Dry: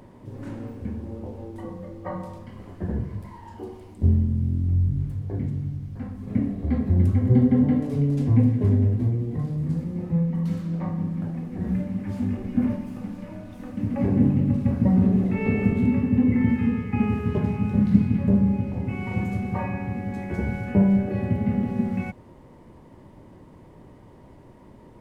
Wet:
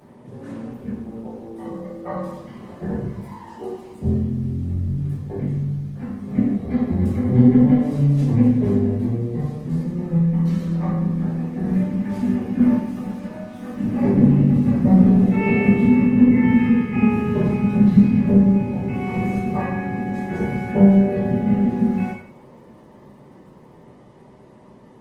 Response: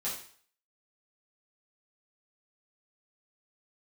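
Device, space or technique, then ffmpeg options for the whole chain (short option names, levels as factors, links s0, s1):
far-field microphone of a smart speaker: -filter_complex "[1:a]atrim=start_sample=2205[s0];[0:a][s0]afir=irnorm=-1:irlink=0,highpass=f=130:p=1,dynaudnorm=f=290:g=21:m=1.41,volume=1.12" -ar 48000 -c:a libopus -b:a 20k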